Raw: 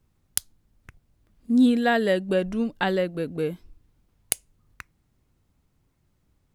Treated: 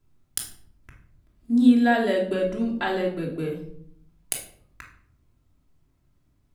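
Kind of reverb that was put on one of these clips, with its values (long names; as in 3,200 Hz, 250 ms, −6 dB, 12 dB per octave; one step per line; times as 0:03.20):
rectangular room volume 1,000 cubic metres, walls furnished, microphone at 3 metres
level −4.5 dB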